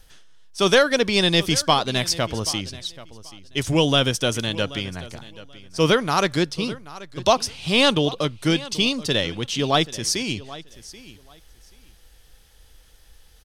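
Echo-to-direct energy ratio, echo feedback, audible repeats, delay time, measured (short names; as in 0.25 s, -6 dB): -18.0 dB, 19%, 2, 0.782 s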